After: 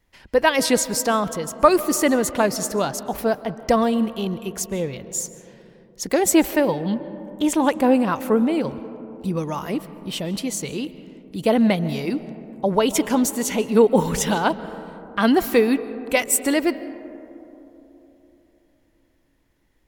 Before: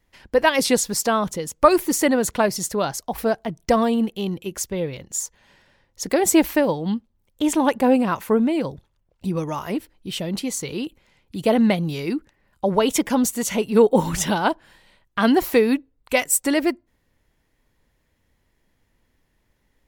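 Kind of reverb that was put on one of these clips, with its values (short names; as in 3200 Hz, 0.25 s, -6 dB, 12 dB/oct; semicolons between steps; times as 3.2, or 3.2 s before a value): digital reverb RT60 3.5 s, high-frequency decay 0.25×, pre-delay 0.1 s, DRR 14.5 dB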